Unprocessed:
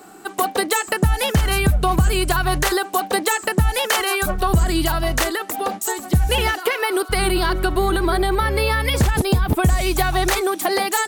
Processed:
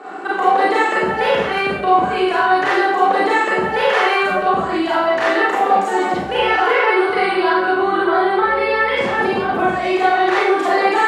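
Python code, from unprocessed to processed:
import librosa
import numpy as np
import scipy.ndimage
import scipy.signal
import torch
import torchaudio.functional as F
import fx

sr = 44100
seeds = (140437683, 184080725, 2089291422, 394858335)

p1 = fx.over_compress(x, sr, threshold_db=-28.0, ratio=-1.0)
p2 = x + (p1 * librosa.db_to_amplitude(1.0))
p3 = fx.bandpass_edges(p2, sr, low_hz=380.0, high_hz=2100.0)
p4 = fx.rev_schroeder(p3, sr, rt60_s=0.7, comb_ms=31, drr_db=-7.5)
y = p4 * librosa.db_to_amplitude(-3.5)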